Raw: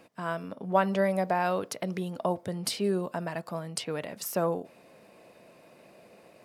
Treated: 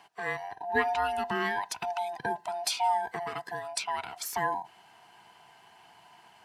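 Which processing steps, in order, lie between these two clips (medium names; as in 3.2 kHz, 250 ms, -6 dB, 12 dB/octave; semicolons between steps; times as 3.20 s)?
split-band scrambler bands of 500 Hz; frequency weighting A; trim +1.5 dB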